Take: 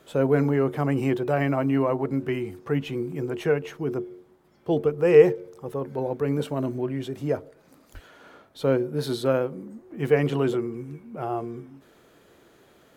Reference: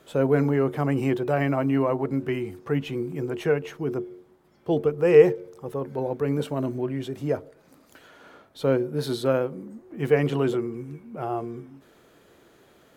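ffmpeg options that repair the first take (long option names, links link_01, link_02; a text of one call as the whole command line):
ffmpeg -i in.wav -filter_complex "[0:a]asplit=3[link_01][link_02][link_03];[link_01]afade=type=out:start_time=7.93:duration=0.02[link_04];[link_02]highpass=frequency=140:width=0.5412,highpass=frequency=140:width=1.3066,afade=type=in:start_time=7.93:duration=0.02,afade=type=out:start_time=8.05:duration=0.02[link_05];[link_03]afade=type=in:start_time=8.05:duration=0.02[link_06];[link_04][link_05][link_06]amix=inputs=3:normalize=0" out.wav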